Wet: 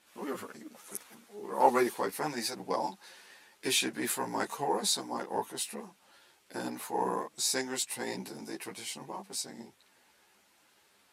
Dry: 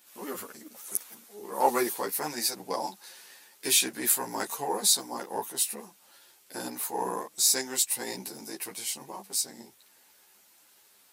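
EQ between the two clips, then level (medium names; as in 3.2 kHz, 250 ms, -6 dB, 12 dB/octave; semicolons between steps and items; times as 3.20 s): low-pass 11 kHz 12 dB/octave; tone controls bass +3 dB, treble -8 dB; 0.0 dB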